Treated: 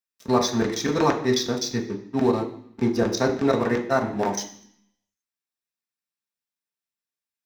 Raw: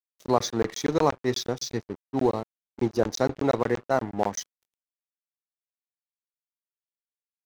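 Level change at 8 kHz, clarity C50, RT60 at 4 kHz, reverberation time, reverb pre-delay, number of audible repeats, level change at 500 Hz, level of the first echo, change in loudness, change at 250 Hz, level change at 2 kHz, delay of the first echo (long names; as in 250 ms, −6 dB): +3.5 dB, 9.5 dB, 0.80 s, 0.60 s, 3 ms, no echo audible, +2.5 dB, no echo audible, +3.5 dB, +5.0 dB, +5.5 dB, no echo audible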